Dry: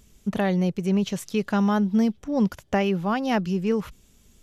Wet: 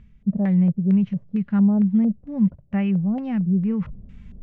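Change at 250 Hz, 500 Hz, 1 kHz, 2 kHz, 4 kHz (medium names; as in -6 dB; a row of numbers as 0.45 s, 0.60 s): +4.5 dB, -9.0 dB, -11.5 dB, no reading, under -15 dB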